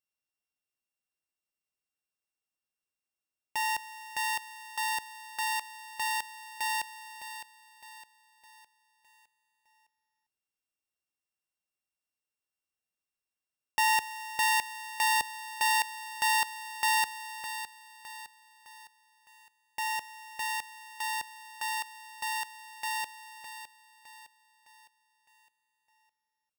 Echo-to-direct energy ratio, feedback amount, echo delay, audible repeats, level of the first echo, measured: -10.0 dB, 45%, 610 ms, 4, -11.0 dB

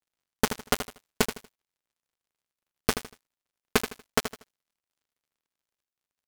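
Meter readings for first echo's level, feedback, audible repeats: -10.0 dB, 29%, 3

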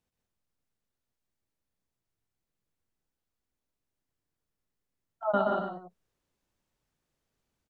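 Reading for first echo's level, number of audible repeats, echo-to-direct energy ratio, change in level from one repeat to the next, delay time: -4.5 dB, 3, -1.0 dB, no regular repeats, 126 ms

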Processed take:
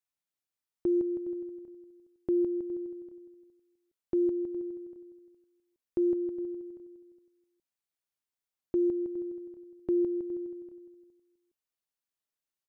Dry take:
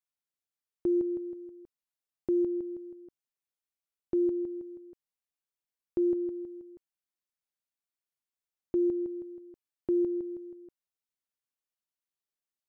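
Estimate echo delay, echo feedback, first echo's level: 414 ms, 23%, -15.5 dB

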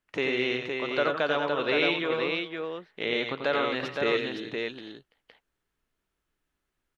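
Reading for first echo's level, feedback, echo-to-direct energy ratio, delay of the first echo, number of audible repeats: -6.0 dB, no regular repeats, -1.5 dB, 89 ms, 3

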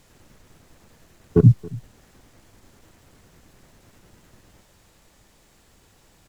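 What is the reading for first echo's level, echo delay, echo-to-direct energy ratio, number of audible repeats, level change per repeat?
-21.5 dB, 275 ms, -21.5 dB, 1, no regular repeats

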